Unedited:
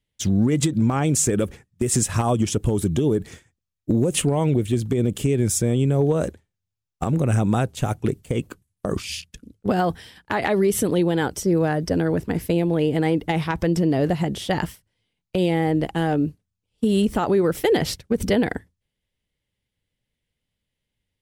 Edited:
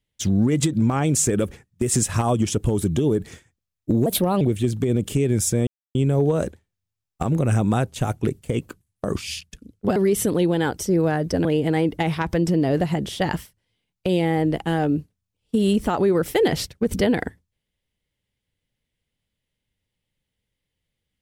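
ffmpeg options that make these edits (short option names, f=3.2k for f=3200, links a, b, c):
-filter_complex "[0:a]asplit=6[a][b][c][d][e][f];[a]atrim=end=4.064[g];[b]atrim=start=4.06:end=4.5,asetpts=PTS-STARTPTS,asetrate=55566,aresample=44100[h];[c]atrim=start=4.496:end=5.76,asetpts=PTS-STARTPTS,afade=t=out:st=1.26:d=0.004:c=hsin,apad=pad_dur=0.28[i];[d]atrim=start=5.76:end=9.772,asetpts=PTS-STARTPTS,afade=t=in:d=0.004:c=hsin[j];[e]atrim=start=10.528:end=12.022[k];[f]atrim=start=12.738[l];[g][h]acrossfade=d=0.004:c1=hsin:c2=hsin[m];[i][j]concat=n=2:v=0:a=1[n];[m][n]acrossfade=d=0.004:c1=hsin:c2=hsin[o];[o][k]acrossfade=d=0.004:c1=hsin:c2=hsin[p];[p][l]acrossfade=d=0.004:c1=hsin:c2=hsin"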